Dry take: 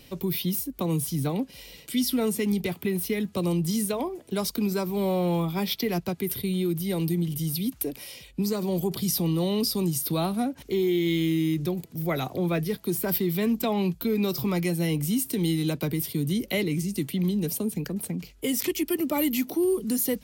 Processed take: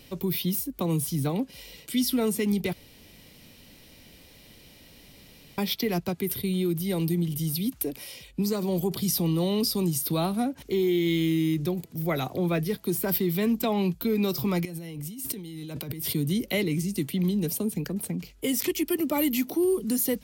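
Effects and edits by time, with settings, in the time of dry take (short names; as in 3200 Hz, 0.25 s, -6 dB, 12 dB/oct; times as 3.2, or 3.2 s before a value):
2.73–5.58 room tone
14.65–16.14 negative-ratio compressor -36 dBFS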